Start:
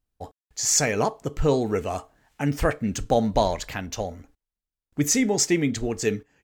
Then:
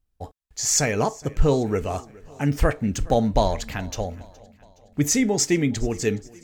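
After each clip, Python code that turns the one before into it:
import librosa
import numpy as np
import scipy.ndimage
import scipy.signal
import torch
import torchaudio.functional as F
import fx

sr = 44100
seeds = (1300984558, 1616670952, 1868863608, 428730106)

y = fx.low_shelf(x, sr, hz=110.0, db=8.5)
y = fx.echo_feedback(y, sr, ms=418, feedback_pct=54, wet_db=-23.0)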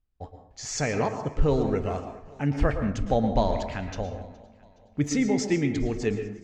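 y = fx.air_absorb(x, sr, metres=130.0)
y = fx.rev_plate(y, sr, seeds[0], rt60_s=0.7, hf_ratio=0.5, predelay_ms=100, drr_db=7.0)
y = y * 10.0 ** (-3.5 / 20.0)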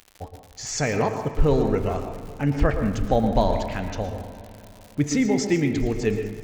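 y = fx.dmg_crackle(x, sr, seeds[1], per_s=130.0, level_db=-37.0)
y = fx.rev_spring(y, sr, rt60_s=3.7, pass_ms=(38, 51, 56), chirp_ms=25, drr_db=13.0)
y = y * 10.0 ** (3.0 / 20.0)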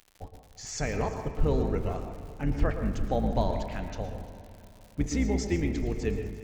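y = fx.octave_divider(x, sr, octaves=2, level_db=1.0)
y = y + 10.0 ** (-19.0 / 20.0) * np.pad(y, (int(348 * sr / 1000.0), 0))[:len(y)]
y = y * 10.0 ** (-8.0 / 20.0)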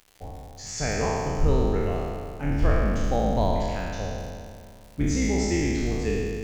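y = fx.spec_trails(x, sr, decay_s=2.14)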